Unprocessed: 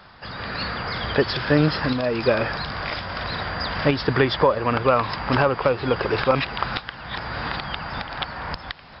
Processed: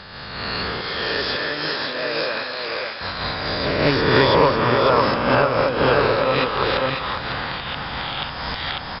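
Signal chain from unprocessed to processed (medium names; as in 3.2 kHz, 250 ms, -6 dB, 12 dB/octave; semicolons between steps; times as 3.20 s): reverse spectral sustain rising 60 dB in 1.93 s; 0.81–3.01 s: high-pass 1.2 kHz 6 dB/octave; delay 548 ms -4 dB; reverberation RT60 5.1 s, pre-delay 80 ms, DRR 11.5 dB; random flutter of the level, depth 60%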